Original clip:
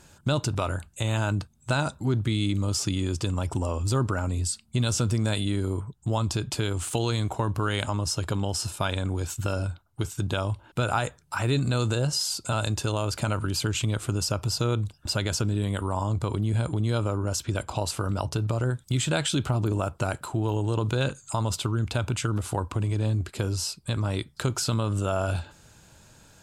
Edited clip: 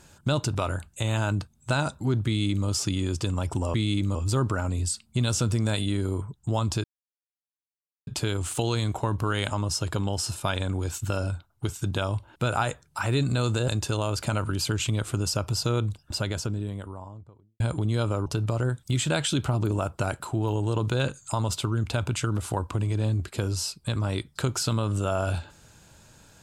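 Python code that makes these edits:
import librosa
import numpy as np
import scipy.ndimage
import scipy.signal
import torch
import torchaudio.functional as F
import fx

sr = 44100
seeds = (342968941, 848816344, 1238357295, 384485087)

y = fx.studio_fade_out(x, sr, start_s=14.78, length_s=1.77)
y = fx.edit(y, sr, fx.duplicate(start_s=2.26, length_s=0.41, to_s=3.74),
    fx.insert_silence(at_s=6.43, length_s=1.23),
    fx.cut(start_s=12.04, length_s=0.59),
    fx.cut(start_s=17.21, length_s=1.06), tone=tone)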